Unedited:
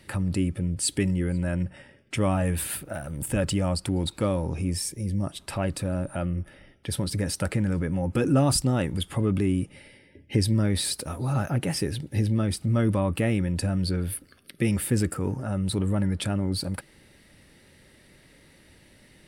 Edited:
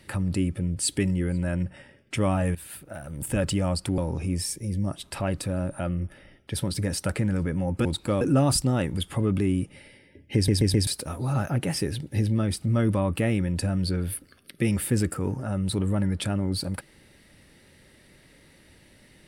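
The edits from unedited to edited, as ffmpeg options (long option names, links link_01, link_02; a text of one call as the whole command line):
ffmpeg -i in.wav -filter_complex "[0:a]asplit=9[link_01][link_02][link_03][link_04][link_05][link_06][link_07][link_08][link_09];[link_01]atrim=end=2.55,asetpts=PTS-STARTPTS,afade=type=out:start_time=2.546:duration=0.004:curve=hsin:silence=0.16788[link_10];[link_02]atrim=start=2.55:end=3.982,asetpts=PTS-STARTPTS,afade=type=in:duration=0.8:silence=0.16788[link_11];[link_03]atrim=start=4.338:end=8.212[link_12];[link_04]atrim=start=3.978:end=4.342[link_13];[link_05]atrim=start=8.208:end=10.482[link_14];[link_06]atrim=start=10.348:end=10.482[link_15];[link_07]atrim=start=10.348:end=10.482[link_16];[link_08]atrim=start=10.348:end=10.482[link_17];[link_09]atrim=start=10.868[link_18];[link_10][link_11]concat=n=2:v=0:a=1[link_19];[link_19][link_12]acrossfade=duration=0.004:curve1=hsin:curve2=hsin[link_20];[link_20][link_13]acrossfade=duration=0.004:curve1=hsin:curve2=hsin[link_21];[link_21][link_14]acrossfade=duration=0.004:curve1=hsin:curve2=hsin[link_22];[link_22][link_15]acrossfade=duration=0.004:curve1=hsin:curve2=hsin[link_23];[link_23][link_16]acrossfade=duration=0.004:curve1=hsin:curve2=hsin[link_24];[link_24][link_17]acrossfade=duration=0.004:curve1=hsin:curve2=hsin[link_25];[link_25][link_18]acrossfade=duration=0.004:curve1=hsin:curve2=hsin" out.wav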